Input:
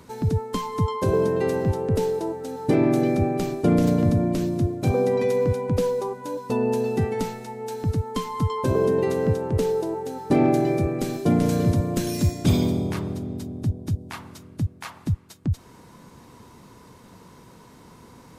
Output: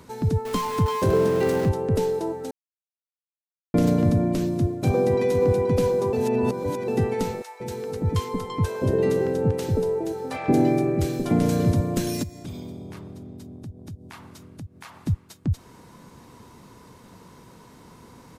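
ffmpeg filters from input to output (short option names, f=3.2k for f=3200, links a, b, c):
-filter_complex "[0:a]asettb=1/sr,asplit=3[a][b][c];[a]atrim=end=0.454[d];[b]atrim=start=0.45:end=1.69,asetpts=PTS-STARTPTS,afade=t=in:d=0.004:c=qsin,afade=t=out:st=1.236:d=0.004:c=qsin,aeval=exprs='val(0)+0.5*0.0316*sgn(val(0))':c=same[e];[c]atrim=start=1.686[f];[d][e]acrossfade=d=0.004:c1=hsin:c2=qsin[g];[g][f]acrossfade=d=0.004:c1=qsin:c2=hsin,asplit=2[h][i];[i]afade=t=in:st=4.45:d=0.01,afade=t=out:st=5.4:d=0.01,aecho=0:1:480|960|1440|1920|2400|2880|3360|3840|4320|4800|5280|5760:0.446684|0.357347|0.285877|0.228702|0.182962|0.146369|0.117095|0.0936763|0.0749411|0.0599529|0.0479623|0.0383698[j];[h][j]amix=inputs=2:normalize=0,asettb=1/sr,asplit=3[k][l][m];[k]atrim=end=7.424[n];[l]atrim=start=7.42:end=11.31,asetpts=PTS-STARTPTS,afade=t=in:d=0.004:c=qsin,afade=t=out:st=3.886:d=0.004:c=qsin,acrossover=split=770[o][p];[o]adelay=180[q];[q][p]amix=inputs=2:normalize=0,atrim=end_sample=171549[r];[m]atrim=start=11.306[s];[n][r]acrossfade=d=0.004:c1=hsin:c2=qsin[t];[t][s]acrossfade=d=0.004:c1=qsin:c2=hsin,asplit=3[u][v][w];[u]afade=t=out:st=12.22:d=0.02[x];[v]acompressor=threshold=-41dB:ratio=2.5:attack=3.2:release=140:knee=1:detection=peak,afade=t=in:st=12.22:d=0.02,afade=t=out:st=14.99:d=0.02[y];[w]afade=t=in:st=14.99:d=0.02[z];[x][y][z]amix=inputs=3:normalize=0,asplit=5[aa][ab][ac][ad][ae];[aa]atrim=end=2.51,asetpts=PTS-STARTPTS,afade=t=out:st=2.506:d=0.004:c=hsin[af];[ab]atrim=start=2.51:end=3.74,asetpts=PTS-STARTPTS,volume=0[ag];[ac]atrim=start=3.74:end=6.132,asetpts=PTS-STARTPTS,afade=t=in:d=0.004:c=hsin[ah];[ad]atrim=start=6.128:end=6.882,asetpts=PTS-STARTPTS,areverse[ai];[ae]atrim=start=6.878[aj];[af][ag][ah]concat=n=3:v=0:a=1[ak];[ak][ai]acrossfade=d=0.004:c1=hsin:c2=hsin[al];[al][aj]acrossfade=d=0.004:c1=hsin:c2=hsin"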